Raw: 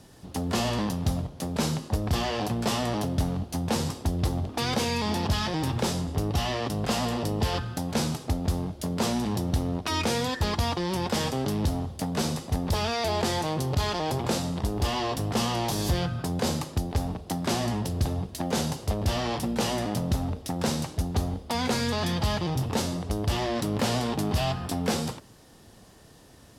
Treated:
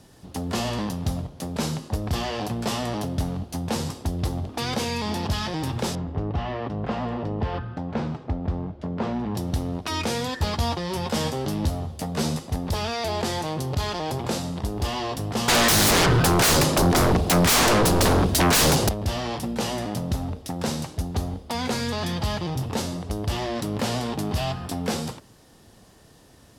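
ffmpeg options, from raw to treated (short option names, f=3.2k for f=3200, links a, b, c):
-filter_complex "[0:a]asettb=1/sr,asplit=3[a][b][c];[a]atrim=end=5.954[d];[b]atrim=start=5.95:end=9.35,asetpts=PTS-STARTPTS,afade=t=in:d=0.004:c=qsin,afade=t=out:st=3.396:d=0.004:c=qsin,lowpass=1.9k[e];[c]atrim=start=9.346[f];[d][e]acrossfade=d=0.004:c1=hsin:c2=qsin[g];[g][f]acrossfade=d=0.004:c1=qsin:c2=hsin,asettb=1/sr,asplit=3[h][i][j];[h]atrim=end=10.404[k];[i]atrim=start=10.4:end=12.39,asetpts=PTS-STARTPTS,afade=t=in:d=0.004:c=qsin,afade=t=out:st=1.986:d=0.004:c=qsin,asplit=2[l][m];[m]adelay=13,volume=-5.5dB[n];[l][n]amix=inputs=2:normalize=0,atrim=end_sample=87759[o];[j]atrim=start=12.386[p];[k][o]acrossfade=d=0.004:c1=hsin:c2=qsin[q];[q][p]acrossfade=d=0.004:c1=qsin:c2=hsin,asettb=1/sr,asplit=3[r][s][t];[r]atrim=end=15.484[u];[s]atrim=start=15.48:end=18.89,asetpts=PTS-STARTPTS,afade=t=in:d=0.004:c=qsin,afade=t=out:st=3.406:d=0.004:c=qsin,aeval=exprs='0.178*sin(PI/2*6.31*val(0)/0.178)':c=same[v];[t]atrim=start=18.886[w];[u][v]acrossfade=d=0.004:c1=hsin:c2=qsin[x];[x][w]acrossfade=d=0.004:c1=qsin:c2=hsin"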